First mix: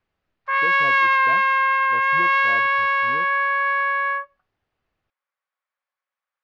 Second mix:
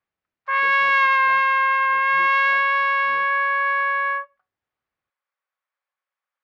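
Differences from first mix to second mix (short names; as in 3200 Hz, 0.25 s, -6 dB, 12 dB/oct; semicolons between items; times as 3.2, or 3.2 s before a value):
speech -11.0 dB; master: add HPF 96 Hz 6 dB/oct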